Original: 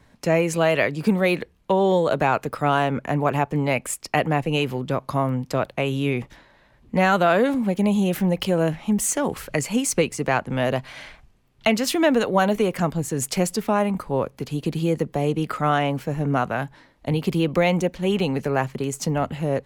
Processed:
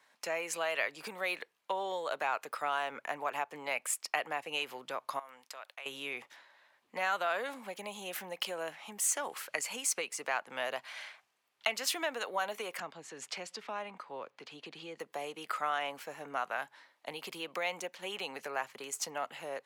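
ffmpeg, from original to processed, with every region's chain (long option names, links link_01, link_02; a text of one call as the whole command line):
ffmpeg -i in.wav -filter_complex "[0:a]asettb=1/sr,asplit=3[link_01][link_02][link_03];[link_01]atrim=end=5.194[link_04];[link_02]atrim=start=5.19:end=5.86,asetpts=PTS-STARTPTS,afade=type=in:duration=0.004:curve=qsin,afade=type=out:start_time=0.666:duration=0.004:curve=qsin,highpass=frequency=1200:poles=1,agate=range=-33dB:threshold=-56dB:ratio=3:release=100:detection=peak,acompressor=threshold=-37dB:ratio=3:attack=3.2:release=140:knee=1:detection=peak[link_05];[link_03]atrim=start=5.856[link_06];[link_04][link_05]acrossfade=duration=0.004:curve1=hsin:curve2=qsin[link_07];[link_07][link_06]acrossfade=duration=0.004:curve1=qsin:curve2=hsin,asettb=1/sr,asplit=3[link_08][link_09][link_10];[link_08]atrim=end=12.804[link_11];[link_09]atrim=start=12.8:end=15,asetpts=PTS-STARTPTS,afade=type=in:duration=0.004:curve=qsin,afade=type=out:start_time=2.196:duration=0.004:curve=qsin,lowpass=3900,acrossover=split=340|3000[link_12][link_13][link_14];[link_13]acompressor=threshold=-40dB:ratio=1.5:attack=3.2:release=140:knee=2.83:detection=peak[link_15];[link_12][link_15][link_14]amix=inputs=3:normalize=0[link_16];[link_10]atrim=start=14.996[link_17];[link_11][link_16]acrossfade=duration=0.004:curve1=hsin:curve2=qsin[link_18];[link_18][link_17]acrossfade=duration=0.004:curve1=qsin:curve2=hsin,acompressor=threshold=-21dB:ratio=2.5,highpass=840,volume=-5dB" out.wav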